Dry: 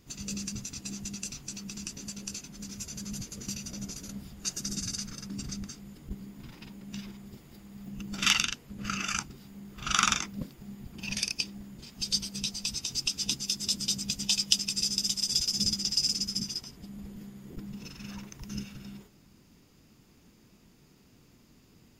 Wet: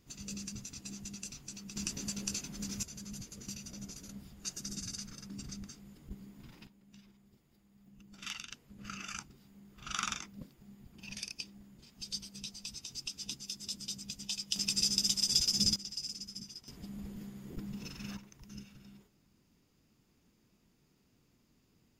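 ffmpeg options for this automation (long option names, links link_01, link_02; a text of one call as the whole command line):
ffmpeg -i in.wav -af "asetnsamples=nb_out_samples=441:pad=0,asendcmd='1.76 volume volume 1.5dB;2.83 volume volume -7dB;6.67 volume volume -18dB;8.51 volume volume -11dB;14.56 volume volume -1dB;15.76 volume volume -13dB;16.68 volume volume -1dB;18.17 volume volume -11dB',volume=-6.5dB" out.wav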